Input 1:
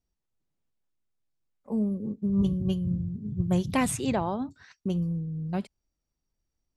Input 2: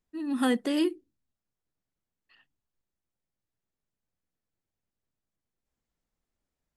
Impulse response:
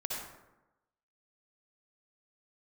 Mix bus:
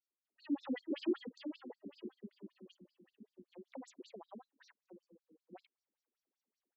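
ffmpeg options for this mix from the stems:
-filter_complex "[0:a]acompressor=threshold=-36dB:ratio=6,volume=-4.5dB,asplit=2[a][b];[1:a]lowpass=5k,alimiter=level_in=2.5dB:limit=-24dB:level=0:latency=1:release=18,volume=-2.5dB,adelay=250,volume=1.5dB,asplit=2[c][d];[d]volume=-6dB[e];[b]apad=whole_len=309210[f];[c][f]sidechaincompress=threshold=-50dB:ratio=8:attack=16:release=216[g];[e]aecho=0:1:469|938|1407|1876|2345:1|0.34|0.116|0.0393|0.0134[h];[a][g][h]amix=inputs=3:normalize=0,afftfilt=real='re*between(b*sr/1024,280*pow(5700/280,0.5+0.5*sin(2*PI*5.2*pts/sr))/1.41,280*pow(5700/280,0.5+0.5*sin(2*PI*5.2*pts/sr))*1.41)':imag='im*between(b*sr/1024,280*pow(5700/280,0.5+0.5*sin(2*PI*5.2*pts/sr))/1.41,280*pow(5700/280,0.5+0.5*sin(2*PI*5.2*pts/sr))*1.41)':win_size=1024:overlap=0.75"

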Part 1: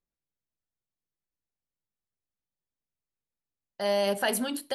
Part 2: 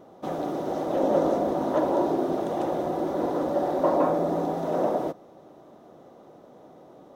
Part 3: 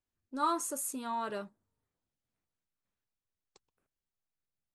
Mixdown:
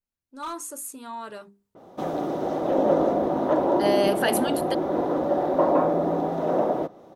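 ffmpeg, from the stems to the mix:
-filter_complex "[0:a]volume=-4.5dB[a];[1:a]adynamicequalizer=threshold=0.00282:dfrequency=4600:dqfactor=0.7:tfrequency=4600:tqfactor=0.7:attack=5:release=100:ratio=0.375:range=3.5:mode=cutabove:tftype=highshelf,adelay=1750,volume=-6dB[b];[2:a]highshelf=f=5.3k:g=4,bandreject=f=50:t=h:w=6,bandreject=f=100:t=h:w=6,bandreject=f=150:t=h:w=6,bandreject=f=200:t=h:w=6,bandreject=f=250:t=h:w=6,bandreject=f=300:t=h:w=6,bandreject=f=350:t=h:w=6,bandreject=f=400:t=h:w=6,asoftclip=type=hard:threshold=-26dB,volume=-8.5dB[c];[a][b][c]amix=inputs=3:normalize=0,adynamicequalizer=threshold=0.00282:dfrequency=6300:dqfactor=0.72:tfrequency=6300:tqfactor=0.72:attack=5:release=100:ratio=0.375:range=2:mode=cutabove:tftype=bell,dynaudnorm=f=110:g=7:m=8dB"

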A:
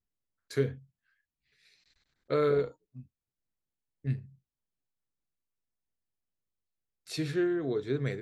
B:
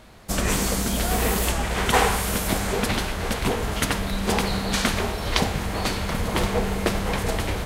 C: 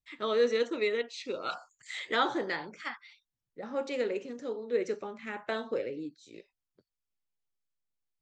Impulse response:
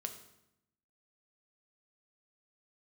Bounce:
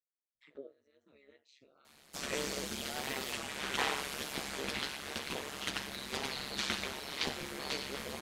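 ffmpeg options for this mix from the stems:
-filter_complex "[0:a]highpass=f=400:w=0.5412,highpass=f=400:w=1.3066,alimiter=limit=-24dB:level=0:latency=1:release=206,lowpass=f=520:t=q:w=4.9,volume=-12.5dB,asplit=2[a][b];[1:a]highpass=310,acrossover=split=5200[c][d];[d]acompressor=threshold=-45dB:ratio=4:attack=1:release=60[e];[c][e]amix=inputs=2:normalize=0,equalizer=f=670:w=0.37:g=-12.5,adelay=1850,volume=1dB,asplit=2[f][g];[g]volume=-7.5dB[h];[2:a]acompressor=threshold=-38dB:ratio=6,alimiter=level_in=16dB:limit=-24dB:level=0:latency=1:release=296,volume=-16dB,adelay=350,volume=-5.5dB,afade=t=out:st=1.3:d=0.63:silence=0.446684,asplit=2[i][j];[j]volume=-21.5dB[k];[b]apad=whole_len=377743[l];[i][l]sidechaincompress=threshold=-52dB:ratio=10:attack=11:release=484[m];[3:a]atrim=start_sample=2205[n];[h][k]amix=inputs=2:normalize=0[o];[o][n]afir=irnorm=-1:irlink=0[p];[a][f][m][p]amix=inputs=4:normalize=0,flanger=delay=7.3:depth=8:regen=29:speed=0.32:shape=triangular,tremolo=f=140:d=0.919"

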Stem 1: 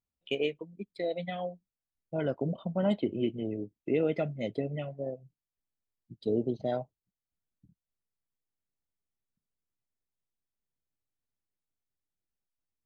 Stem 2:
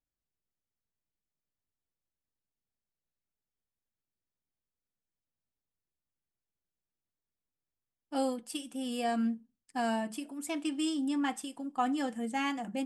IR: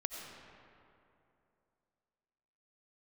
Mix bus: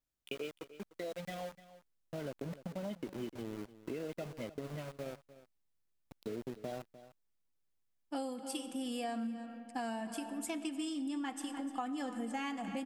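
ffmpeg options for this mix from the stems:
-filter_complex "[0:a]acompressor=threshold=-35dB:ratio=2,aeval=exprs='val(0)*gte(abs(val(0)),0.01)':c=same,volume=-4dB,asplit=2[a][b];[b]volume=-17dB[c];[1:a]volume=-1.5dB,asplit=3[d][e][f];[e]volume=-7.5dB[g];[f]volume=-13.5dB[h];[2:a]atrim=start_sample=2205[i];[g][i]afir=irnorm=-1:irlink=0[j];[c][h]amix=inputs=2:normalize=0,aecho=0:1:300:1[k];[a][d][j][k]amix=inputs=4:normalize=0,acompressor=threshold=-36dB:ratio=6"

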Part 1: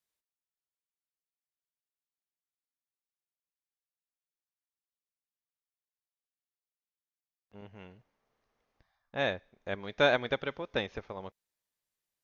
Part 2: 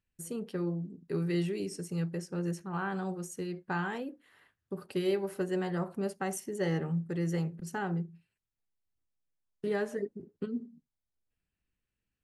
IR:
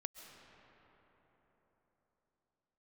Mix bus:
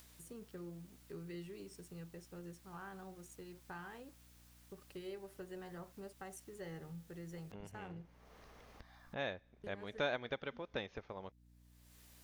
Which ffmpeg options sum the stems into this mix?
-filter_complex "[0:a]acompressor=mode=upward:threshold=-41dB:ratio=2.5,volume=-1.5dB,asplit=2[a][b];[1:a]asubboost=boost=9.5:cutoff=63,aeval=exprs='sgn(val(0))*max(abs(val(0))-0.00168,0)':c=same,aeval=exprs='val(0)+0.00224*(sin(2*PI*60*n/s)+sin(2*PI*2*60*n/s)/2+sin(2*PI*3*60*n/s)/3+sin(2*PI*4*60*n/s)/4+sin(2*PI*5*60*n/s)/5)':c=same,volume=-10.5dB[c];[b]apad=whole_len=539607[d];[c][d]sidechaincompress=threshold=-45dB:ratio=8:attack=32:release=112[e];[a][e]amix=inputs=2:normalize=0,acompressor=threshold=-51dB:ratio=1.5"

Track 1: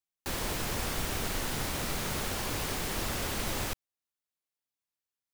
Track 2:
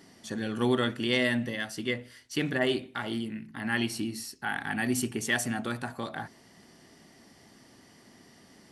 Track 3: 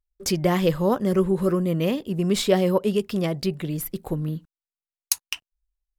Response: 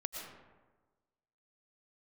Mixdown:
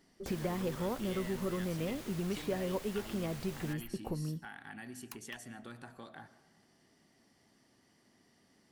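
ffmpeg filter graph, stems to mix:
-filter_complex "[0:a]asoftclip=type=tanh:threshold=-25.5dB,volume=-14dB[a];[1:a]acompressor=threshold=-31dB:ratio=6,volume=-14.5dB,asplit=2[b][c];[c]volume=-10dB[d];[2:a]acrossover=split=950|2800[e][f][g];[e]acompressor=threshold=-33dB:ratio=4[h];[f]acompressor=threshold=-40dB:ratio=4[i];[g]acompressor=threshold=-46dB:ratio=4[j];[h][i][j]amix=inputs=3:normalize=0,equalizer=f=4.8k:w=0.35:g=-10,volume=-2.5dB[k];[3:a]atrim=start_sample=2205[l];[d][l]afir=irnorm=-1:irlink=0[m];[a][b][k][m]amix=inputs=4:normalize=0"

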